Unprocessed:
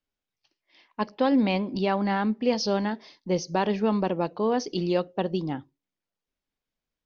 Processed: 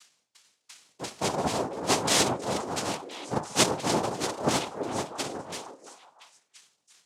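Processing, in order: zero-crossing glitches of -29.5 dBFS; treble shelf 2.6 kHz +9.5 dB; reverberation RT60 0.50 s, pre-delay 3 ms, DRR 5 dB; LFO low-pass saw down 2.9 Hz 420–1800 Hz; peaking EQ 280 Hz -9 dB 1.3 oct; noise-vocoded speech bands 2; repeats whose band climbs or falls 339 ms, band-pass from 400 Hz, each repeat 1.4 oct, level -3.5 dB; three bands expanded up and down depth 40%

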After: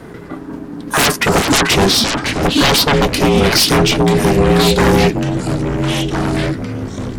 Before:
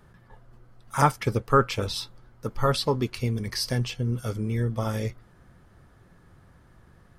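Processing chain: sine folder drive 20 dB, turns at -5.5 dBFS; ring modulator 290 Hz; ever faster or slower copies 119 ms, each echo -4 st, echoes 3, each echo -6 dB

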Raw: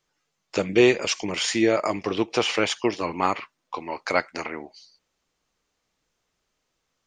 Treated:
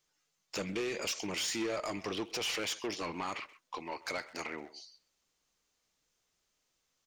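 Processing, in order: treble shelf 3.5 kHz +10 dB; peak limiter -13 dBFS, peak gain reduction 10 dB; saturation -22.5 dBFS, distortion -11 dB; speakerphone echo 130 ms, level -15 dB; trim -7.5 dB

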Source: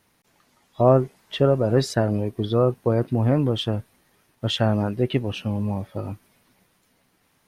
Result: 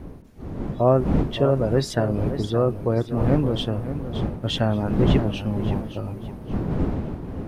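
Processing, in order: wind noise 250 Hz -26 dBFS; modulated delay 571 ms, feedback 32%, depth 86 cents, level -11 dB; trim -1.5 dB

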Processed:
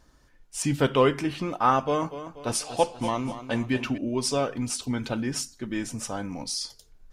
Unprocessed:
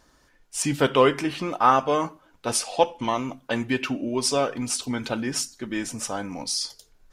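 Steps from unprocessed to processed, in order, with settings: bass shelf 190 Hz +9.5 dB; 1.78–3.98 s: modulated delay 242 ms, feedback 48%, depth 57 cents, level -12 dB; trim -4 dB

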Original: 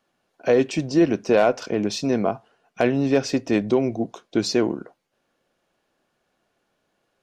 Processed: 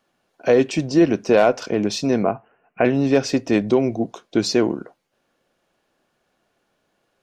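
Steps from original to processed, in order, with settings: 2.23–2.85 s: steep low-pass 2.8 kHz 96 dB/octave; trim +2.5 dB

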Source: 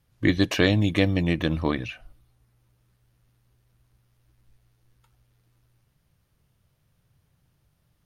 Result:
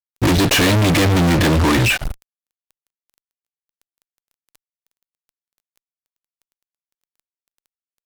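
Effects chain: crackle 170 per s -54 dBFS; fuzz box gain 46 dB, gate -48 dBFS

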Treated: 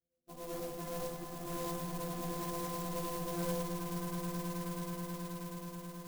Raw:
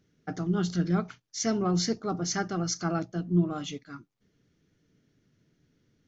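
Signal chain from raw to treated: sorted samples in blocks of 256 samples; high-pass 48 Hz; reverb removal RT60 1.7 s; Chebyshev low-pass 700 Hz, order 8; inharmonic resonator 250 Hz, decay 0.45 s, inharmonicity 0.008; Chebyshev shaper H 3 -16 dB, 4 -20 dB, 8 -19 dB, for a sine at -35 dBFS; comb of notches 270 Hz; echo with a slow build-up 107 ms, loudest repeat 8, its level -8 dB; reverberation RT60 1.2 s, pre-delay 3 ms, DRR -6.5 dB; sampling jitter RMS 0.1 ms; trim +5 dB

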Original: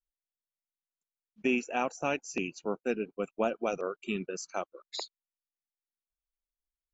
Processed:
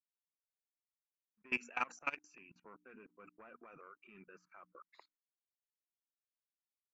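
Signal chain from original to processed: treble shelf 7.1 kHz +11.5 dB; hum notches 60/120/180/240/300 Hz; saturation -24 dBFS, distortion -14 dB; high-order bell 1.6 kHz +14.5 dB; gate -50 dBFS, range -8 dB; level held to a coarse grid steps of 23 dB; level-controlled noise filter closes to 1.3 kHz, open at -25 dBFS; trim -9 dB

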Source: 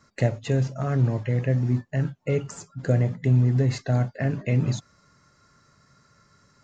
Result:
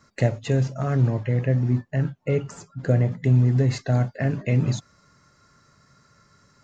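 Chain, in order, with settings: 1.10–3.12 s: treble shelf 5.7 kHz -8.5 dB; trim +1.5 dB

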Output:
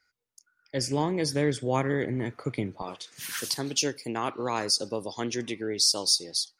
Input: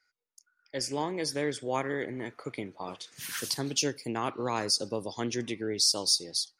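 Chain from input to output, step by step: peaking EQ 91 Hz +11.5 dB 2.7 oct, from 2.82 s -3 dB; trim +2 dB

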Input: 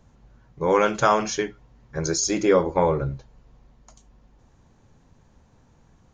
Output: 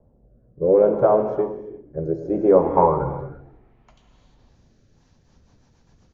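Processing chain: gated-style reverb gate 380 ms flat, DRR 7 dB; low-pass sweep 580 Hz -> 5.3 kHz, 2.31–4.62 s; on a send: frequency-shifting echo 157 ms, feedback 52%, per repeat -41 Hz, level -19 dB; on the sum: rotary cabinet horn 0.65 Hz, later 8 Hz, at 4.74 s

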